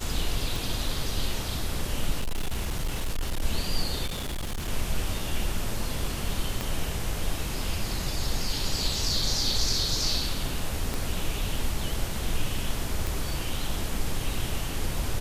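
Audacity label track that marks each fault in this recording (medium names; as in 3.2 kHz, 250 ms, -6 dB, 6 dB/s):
0.560000	0.560000	pop
2.190000	3.420000	clipped -24 dBFS
4.060000	4.690000	clipped -28 dBFS
6.610000	6.610000	pop
10.940000	10.940000	pop
13.070000	13.070000	pop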